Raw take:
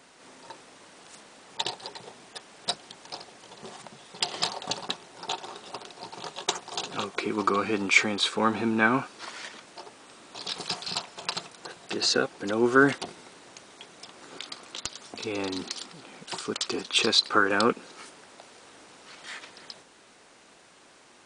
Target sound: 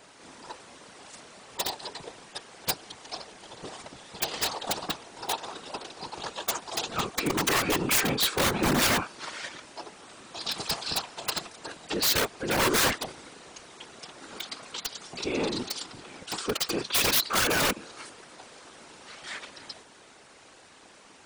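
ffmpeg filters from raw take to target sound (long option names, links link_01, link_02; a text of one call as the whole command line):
ffmpeg -i in.wav -af "aeval=exprs='(mod(8.91*val(0)+1,2)-1)/8.91':channel_layout=same,afftfilt=real='hypot(re,im)*cos(2*PI*random(0))':imag='hypot(re,im)*sin(2*PI*random(1))':win_size=512:overlap=0.75,volume=8dB" out.wav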